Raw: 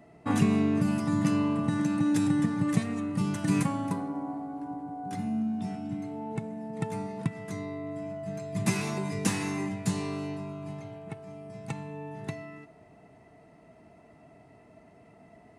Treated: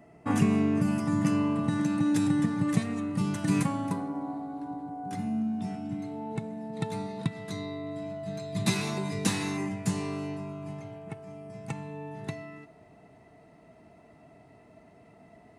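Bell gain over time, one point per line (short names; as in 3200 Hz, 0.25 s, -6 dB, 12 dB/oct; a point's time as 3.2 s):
bell 3900 Hz 0.29 oct
-7.5 dB
from 1.56 s +1.5 dB
from 4.21 s +10 dB
from 4.89 s -0.5 dB
from 5.99 s +7 dB
from 6.72 s +14.5 dB
from 8.74 s +8 dB
from 9.57 s -4 dB
from 11.83 s +3 dB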